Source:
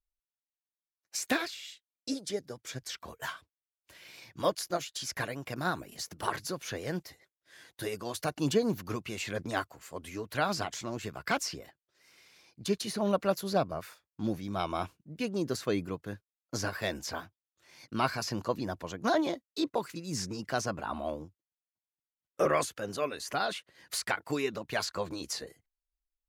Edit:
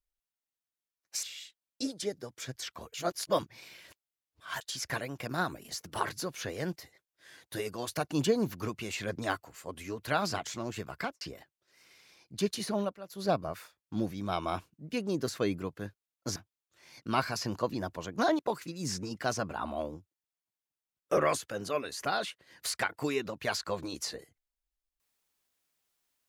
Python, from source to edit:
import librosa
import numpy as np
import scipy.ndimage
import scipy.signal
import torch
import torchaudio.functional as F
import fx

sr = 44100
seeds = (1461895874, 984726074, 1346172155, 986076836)

y = fx.studio_fade_out(x, sr, start_s=11.21, length_s=0.27)
y = fx.edit(y, sr, fx.cut(start_s=1.23, length_s=0.27),
    fx.reverse_span(start_s=3.21, length_s=1.67),
    fx.fade_down_up(start_s=13.0, length_s=0.58, db=-17.5, fade_s=0.24),
    fx.cut(start_s=16.63, length_s=0.59),
    fx.cut(start_s=19.25, length_s=0.42), tone=tone)